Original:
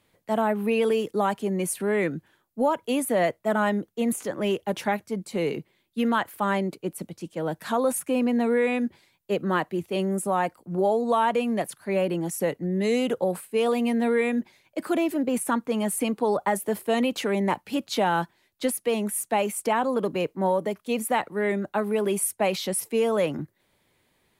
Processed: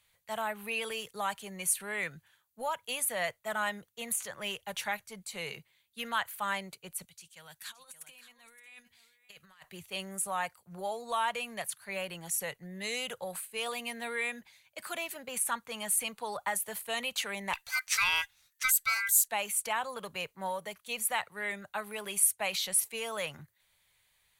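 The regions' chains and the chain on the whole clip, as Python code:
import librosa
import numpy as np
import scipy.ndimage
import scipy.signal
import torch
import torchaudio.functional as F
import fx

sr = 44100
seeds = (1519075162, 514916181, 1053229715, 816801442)

y = fx.chain(x, sr, fx.tone_stack(knobs='5-5-5'),
    fx.over_compress(threshold_db=-45.0, ratio=-0.5),
    fx.echo_single(ms=570, db=-13.5), at=(7.05, 9.64))
y = fx.chain(y, sr, fx.high_shelf(hz=3200.0, db=7.5),
    fx.ring_mod(carrier_hz=1800.0), at=(17.53, 19.28))
y = fx.tone_stack(y, sr, knobs='10-0-10')
y = fx.notch(y, sr, hz=5200.0, q=11.0)
y = F.gain(torch.from_numpy(y), 2.0).numpy()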